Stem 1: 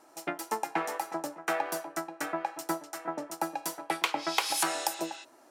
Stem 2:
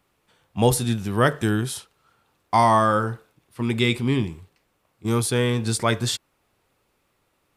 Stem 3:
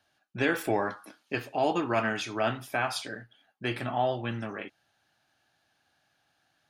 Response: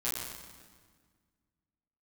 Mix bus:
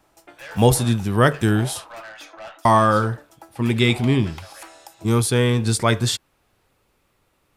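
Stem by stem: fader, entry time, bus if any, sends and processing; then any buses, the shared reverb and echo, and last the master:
−4.5 dB, 0.00 s, no send, elliptic high-pass filter 250 Hz; pitch vibrato 0.56 Hz 6.6 cents; automatic ducking −8 dB, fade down 0.25 s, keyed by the second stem
+2.5 dB, 0.00 s, muted 0:02.02–0:02.65, no send, low-shelf EQ 88 Hz +6.5 dB
−4.0 dB, 0.00 s, no send, Butterworth high-pass 510 Hz 96 dB per octave; tube saturation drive 30 dB, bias 0.3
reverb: not used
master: no processing

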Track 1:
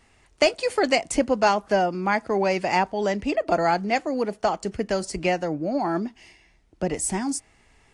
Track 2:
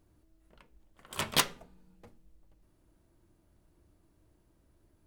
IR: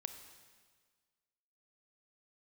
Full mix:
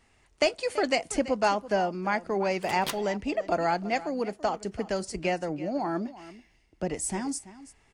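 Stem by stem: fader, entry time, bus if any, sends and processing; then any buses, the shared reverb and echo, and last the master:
−5.0 dB, 0.00 s, no send, echo send −16.5 dB, no processing
−7.5 dB, 1.50 s, no send, no echo send, no processing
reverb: not used
echo: single-tap delay 334 ms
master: no processing

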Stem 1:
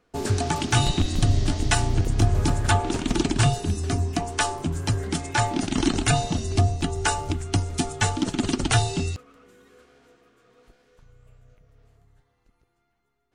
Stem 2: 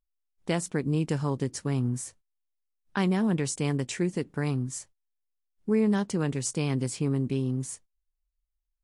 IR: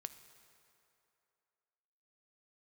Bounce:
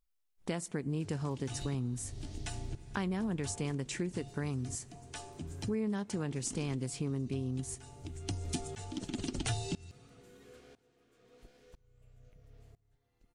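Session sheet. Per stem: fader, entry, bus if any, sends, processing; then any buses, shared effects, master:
0.0 dB, 0.75 s, send −9.5 dB, parametric band 1,200 Hz −7.5 dB 1.2 octaves; shaped tremolo saw up 1 Hz, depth 95%; automatic ducking −24 dB, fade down 1.65 s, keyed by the second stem
+1.5 dB, 0.00 s, send −10 dB, no processing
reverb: on, RT60 2.8 s, pre-delay 3 ms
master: downward compressor 2.5 to 1, threshold −38 dBFS, peak gain reduction 14 dB

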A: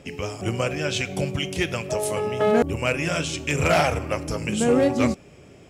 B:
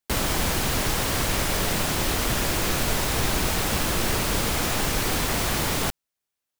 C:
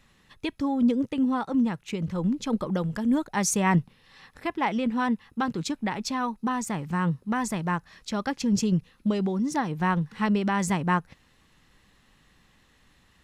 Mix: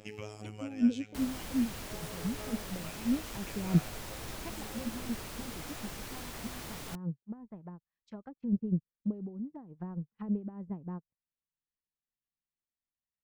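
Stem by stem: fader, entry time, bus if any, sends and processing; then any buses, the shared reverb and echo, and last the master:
−4.5 dB, 0.00 s, no send, downward compressor 3 to 1, threshold −34 dBFS, peak gain reduction 14 dB; phases set to zero 106 Hz; automatic ducking −10 dB, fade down 1.45 s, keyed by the third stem
−18.5 dB, 1.05 s, no send, no processing
−1.0 dB, 0.00 s, no send, treble cut that deepens with the level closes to 450 Hz, closed at −23.5 dBFS; expander for the loud parts 2.5 to 1, over −46 dBFS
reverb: not used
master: no processing

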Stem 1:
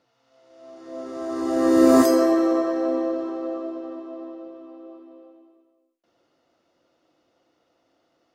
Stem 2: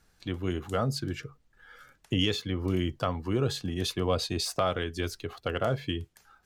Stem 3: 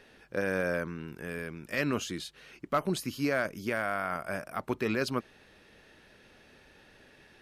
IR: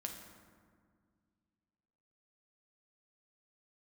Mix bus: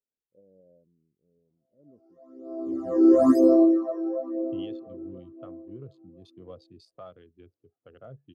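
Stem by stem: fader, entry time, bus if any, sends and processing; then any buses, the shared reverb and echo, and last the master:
+0.5 dB, 1.30 s, no send, parametric band 2,800 Hz −5.5 dB 1.4 octaves; all-pass phaser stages 12, 1 Hz, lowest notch 180–2,600 Hz
−7.0 dB, 2.40 s, no send, adaptive Wiener filter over 41 samples; high-pass filter 94 Hz 24 dB per octave
−13.0 dB, 0.00 s, no send, inverse Chebyshev low-pass filter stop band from 4,100 Hz, stop band 80 dB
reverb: not used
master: every bin expanded away from the loudest bin 1.5 to 1

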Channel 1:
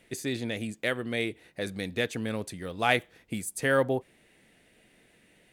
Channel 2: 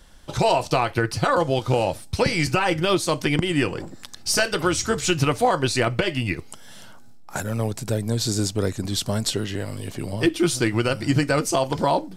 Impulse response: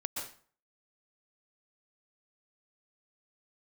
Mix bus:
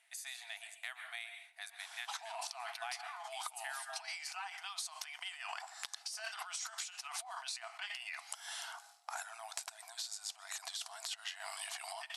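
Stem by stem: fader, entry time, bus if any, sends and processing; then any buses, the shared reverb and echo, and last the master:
−12.0 dB, 0.00 s, send −3.5 dB, high-shelf EQ 8,300 Hz +7 dB
−3.0 dB, 1.80 s, send −23.5 dB, compressor whose output falls as the input rises −31 dBFS, ratio −1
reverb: on, RT60 0.45 s, pre-delay 112 ms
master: linear-phase brick-wall band-pass 650–12,000 Hz; downward compressor 6 to 1, threshold −40 dBFS, peak gain reduction 14 dB

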